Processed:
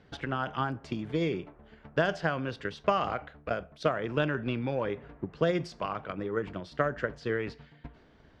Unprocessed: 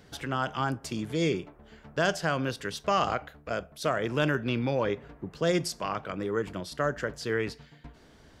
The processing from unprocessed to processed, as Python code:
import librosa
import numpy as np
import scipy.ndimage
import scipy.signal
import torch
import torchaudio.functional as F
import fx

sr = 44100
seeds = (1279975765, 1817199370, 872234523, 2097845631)

y = fx.transient(x, sr, attack_db=8, sustain_db=4)
y = scipy.signal.sosfilt(scipy.signal.butter(2, 3200.0, 'lowpass', fs=sr, output='sos'), y)
y = F.gain(torch.from_numpy(y), -4.5).numpy()